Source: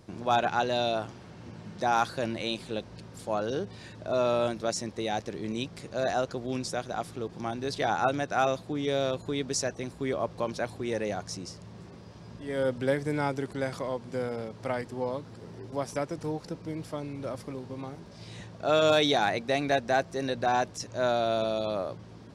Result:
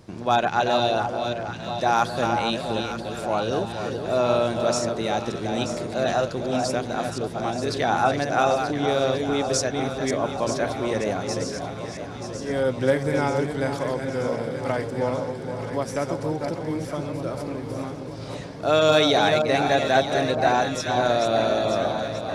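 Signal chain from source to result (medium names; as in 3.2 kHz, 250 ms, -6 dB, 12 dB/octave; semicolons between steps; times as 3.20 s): chunks repeated in reverse 266 ms, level -6 dB; echo whose repeats swap between lows and highs 466 ms, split 1.2 kHz, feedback 80%, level -7.5 dB; trim +4.5 dB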